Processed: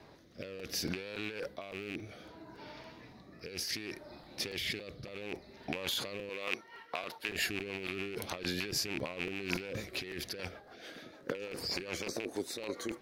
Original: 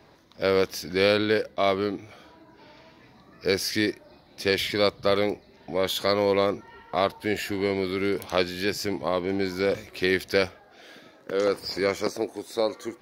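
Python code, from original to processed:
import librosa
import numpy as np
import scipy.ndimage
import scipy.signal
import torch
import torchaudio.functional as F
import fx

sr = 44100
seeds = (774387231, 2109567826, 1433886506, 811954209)

y = fx.rattle_buzz(x, sr, strikes_db=-32.0, level_db=-14.0)
y = fx.high_shelf(y, sr, hz=9900.0, db=6.0, at=(1.46, 1.99))
y = fx.highpass(y, sr, hz=890.0, slope=6, at=(6.29, 7.29))
y = fx.over_compress(y, sr, threshold_db=-32.0, ratio=-1.0)
y = fx.rotary_switch(y, sr, hz=0.65, then_hz=6.7, switch_at_s=6.12)
y = fx.buffer_crackle(y, sr, first_s=0.31, period_s=0.28, block=256, kind='repeat')
y = y * 10.0 ** (-5.0 / 20.0)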